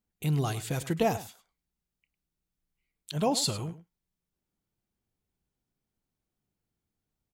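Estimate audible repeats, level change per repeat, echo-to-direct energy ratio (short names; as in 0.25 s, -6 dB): 1, no steady repeat, -15.0 dB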